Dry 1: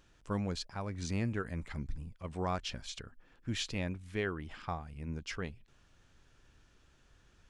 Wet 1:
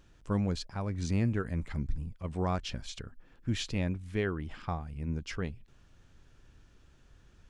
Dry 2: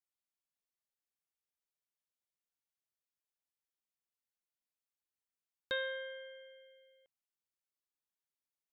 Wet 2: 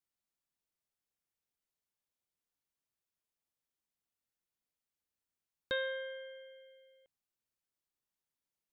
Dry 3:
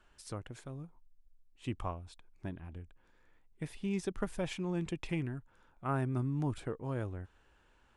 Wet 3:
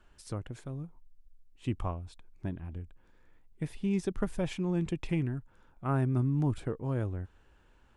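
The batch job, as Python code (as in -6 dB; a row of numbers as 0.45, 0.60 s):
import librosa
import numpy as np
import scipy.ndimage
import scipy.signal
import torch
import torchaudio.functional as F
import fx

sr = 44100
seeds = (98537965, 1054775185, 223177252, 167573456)

y = fx.low_shelf(x, sr, hz=420.0, db=6.5)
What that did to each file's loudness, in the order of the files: +4.0, +1.0, +4.5 LU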